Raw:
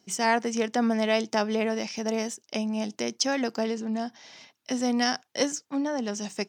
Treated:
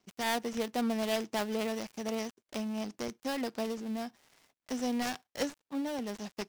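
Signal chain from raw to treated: dead-time distortion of 0.18 ms; trim -6.5 dB

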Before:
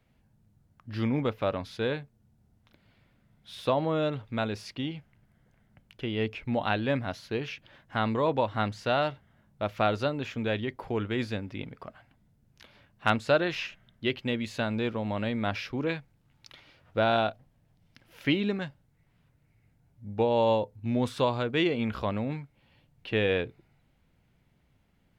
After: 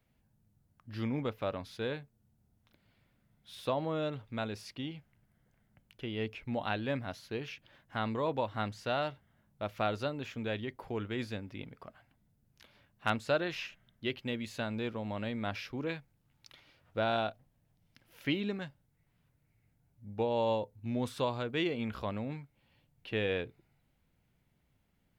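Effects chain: treble shelf 9.2 kHz +9 dB; trim -6.5 dB

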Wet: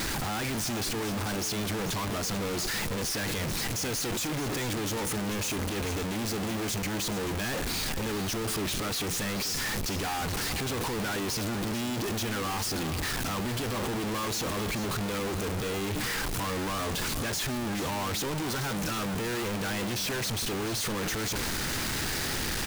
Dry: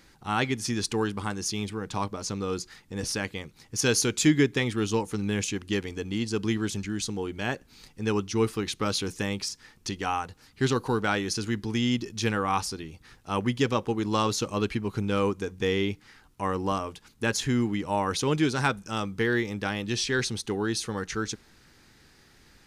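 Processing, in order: one-bit comparator; on a send: delay 437 ms -11.5 dB; on the sum: trim -2.5 dB

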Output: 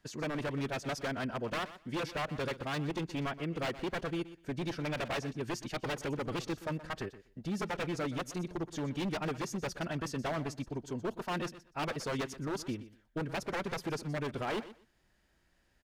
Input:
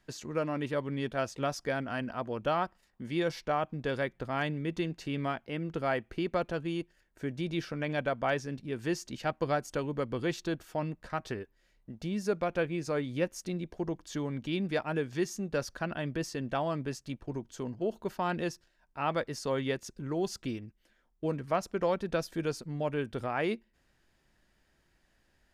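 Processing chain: time stretch by phase-locked vocoder 0.62×; wavefolder -29 dBFS; feedback delay 123 ms, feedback 17%, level -15 dB

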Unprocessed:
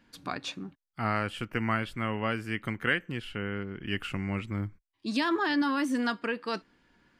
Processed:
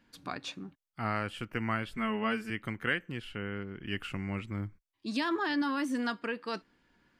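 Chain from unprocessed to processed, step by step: 1.92–2.50 s: comb 4.6 ms, depth 90%; trim -3.5 dB

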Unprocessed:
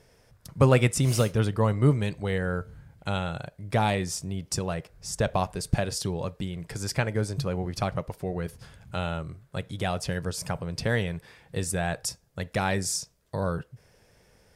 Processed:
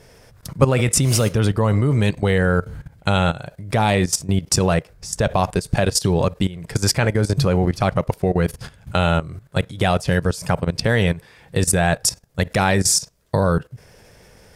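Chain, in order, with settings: level held to a coarse grid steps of 16 dB; loudness maximiser +16.5 dB; trim -1 dB

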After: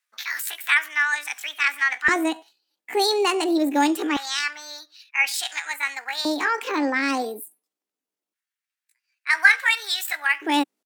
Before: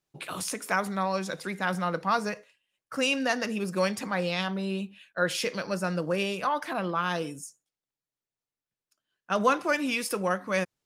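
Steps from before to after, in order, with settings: pitch shift +7.5 st; LFO high-pass square 0.24 Hz 300–1700 Hz; trim +4 dB

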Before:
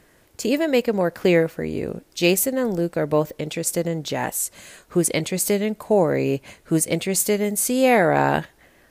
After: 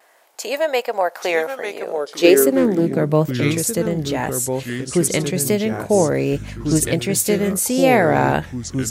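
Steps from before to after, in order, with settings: vibrato 1.3 Hz 42 cents; 6.31–6.87 s: mains buzz 50 Hz, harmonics 5, -36 dBFS; ever faster or slower copies 759 ms, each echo -3 st, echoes 2, each echo -6 dB; high-pass sweep 740 Hz -> 65 Hz, 1.77–3.85 s; 2.53–2.96 s: loudspeaker Doppler distortion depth 0.14 ms; trim +1.5 dB

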